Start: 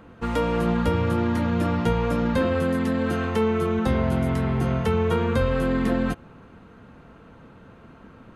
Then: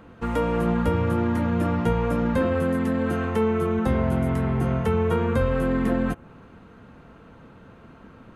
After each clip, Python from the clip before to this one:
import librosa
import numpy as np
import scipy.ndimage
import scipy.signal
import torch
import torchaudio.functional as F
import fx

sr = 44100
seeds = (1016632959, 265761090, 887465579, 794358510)

y = fx.dynamic_eq(x, sr, hz=4400.0, q=1.0, threshold_db=-52.0, ratio=4.0, max_db=-8)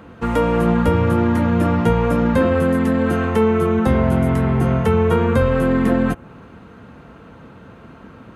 y = scipy.signal.sosfilt(scipy.signal.butter(2, 47.0, 'highpass', fs=sr, output='sos'), x)
y = y * librosa.db_to_amplitude(6.5)